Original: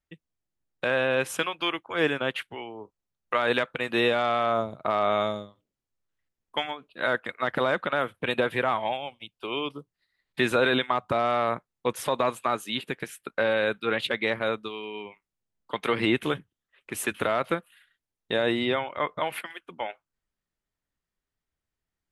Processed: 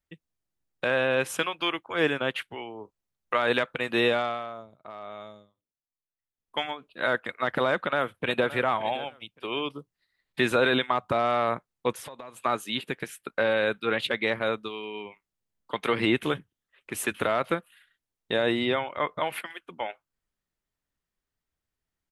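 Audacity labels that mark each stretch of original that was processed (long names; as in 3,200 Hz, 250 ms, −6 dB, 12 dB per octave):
4.150000	6.620000	duck −16.5 dB, fades 0.48 s quadratic
7.710000	8.480000	delay throw 570 ms, feedback 20%, level −15 dB
11.940000	12.400000	downward compressor 8 to 1, threshold −38 dBFS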